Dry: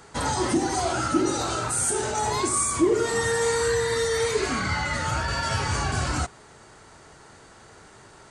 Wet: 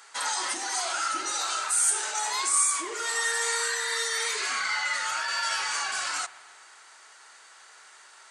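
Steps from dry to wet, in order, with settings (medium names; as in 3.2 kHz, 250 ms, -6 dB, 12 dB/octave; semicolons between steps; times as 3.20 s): high-pass 1.3 kHz 12 dB/octave; spring tank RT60 2.3 s, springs 41 ms, chirp 35 ms, DRR 16.5 dB; trim +2 dB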